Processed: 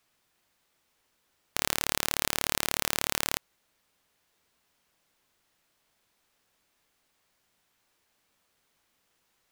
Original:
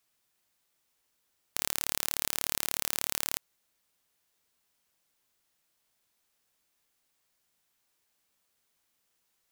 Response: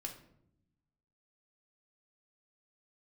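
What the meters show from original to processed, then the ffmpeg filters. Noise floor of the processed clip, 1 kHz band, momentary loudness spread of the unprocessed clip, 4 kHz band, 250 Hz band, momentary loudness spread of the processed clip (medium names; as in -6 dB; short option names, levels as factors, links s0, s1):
-74 dBFS, +7.5 dB, 5 LU, +4.5 dB, +8.0 dB, 5 LU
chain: -af "highshelf=f=5000:g=-9,volume=2.51"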